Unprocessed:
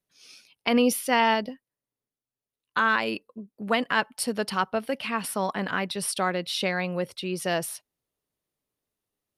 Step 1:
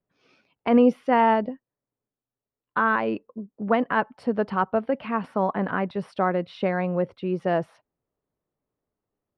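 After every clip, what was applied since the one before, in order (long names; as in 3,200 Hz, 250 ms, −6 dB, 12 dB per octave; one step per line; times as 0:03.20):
low-pass filter 1,200 Hz 12 dB per octave
level +4.5 dB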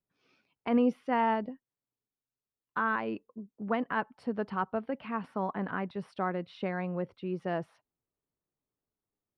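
parametric band 570 Hz −4 dB 0.65 octaves
level −7.5 dB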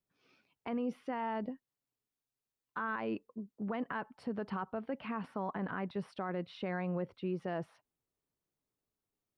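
brickwall limiter −28 dBFS, peak gain reduction 11 dB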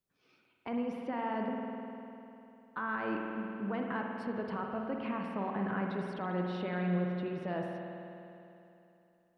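spring reverb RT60 3 s, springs 50 ms, chirp 35 ms, DRR 0.5 dB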